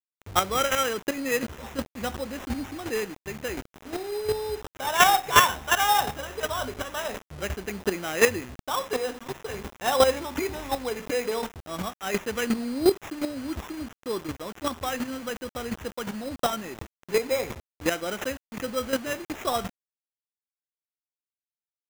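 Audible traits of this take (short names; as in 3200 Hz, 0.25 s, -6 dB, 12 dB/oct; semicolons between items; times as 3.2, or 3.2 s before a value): a quantiser's noise floor 6-bit, dither none; chopped level 2.8 Hz, depth 65%, duty 10%; aliases and images of a low sample rate 4500 Hz, jitter 0%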